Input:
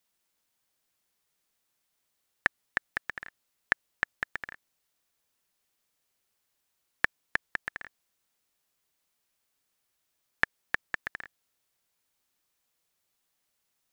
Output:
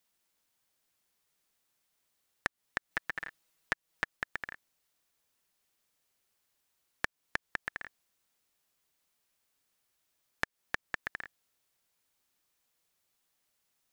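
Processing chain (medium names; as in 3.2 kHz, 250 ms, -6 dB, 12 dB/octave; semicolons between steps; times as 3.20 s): 2.90–4.17 s: comb 6.2 ms, depth 91%; compression 4:1, threshold -30 dBFS, peak gain reduction 12 dB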